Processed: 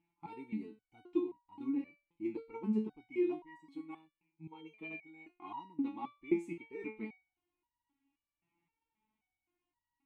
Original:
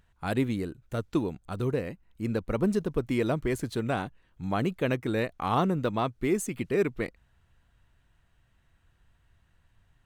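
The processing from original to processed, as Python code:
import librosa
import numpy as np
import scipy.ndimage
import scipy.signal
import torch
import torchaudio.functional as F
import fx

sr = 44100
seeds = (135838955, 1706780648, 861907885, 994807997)

y = fx.robotise(x, sr, hz=159.0, at=(3.41, 5.29))
y = fx.vowel_filter(y, sr, vowel='u')
y = fx.resonator_held(y, sr, hz=3.8, low_hz=170.0, high_hz=950.0)
y = y * librosa.db_to_amplitude(15.5)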